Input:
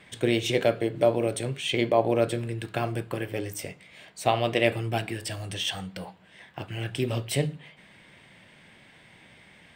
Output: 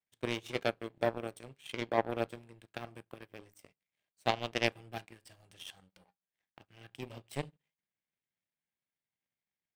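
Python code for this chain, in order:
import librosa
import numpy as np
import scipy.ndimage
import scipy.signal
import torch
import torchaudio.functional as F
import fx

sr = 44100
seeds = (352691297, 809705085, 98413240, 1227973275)

y = fx.comb_fb(x, sr, f0_hz=800.0, decay_s=0.19, harmonics='all', damping=0.0, mix_pct=60)
y = fx.power_curve(y, sr, exponent=2.0)
y = F.gain(torch.from_numpy(y), 5.5).numpy()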